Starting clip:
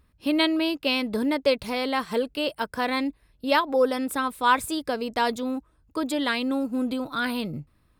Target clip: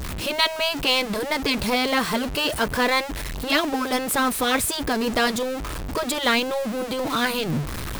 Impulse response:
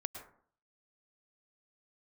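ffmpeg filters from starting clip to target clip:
-af "aeval=exprs='val(0)+0.5*0.0316*sgn(val(0))':channel_layout=same,acontrast=44,afftfilt=real='re*lt(hypot(re,im),0.891)':imag='im*lt(hypot(re,im),0.891)':win_size=1024:overlap=0.75"

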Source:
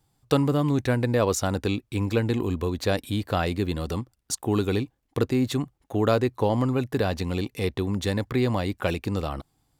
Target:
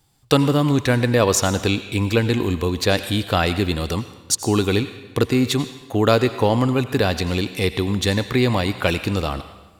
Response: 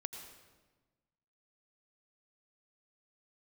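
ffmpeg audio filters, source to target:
-filter_complex "[0:a]asplit=2[link_01][link_02];[link_02]equalizer=frequency=2600:width_type=o:width=2.9:gain=11.5[link_03];[1:a]atrim=start_sample=2205,highshelf=frequency=4300:gain=10[link_04];[link_03][link_04]afir=irnorm=-1:irlink=0,volume=-9dB[link_05];[link_01][link_05]amix=inputs=2:normalize=0,volume=3dB"

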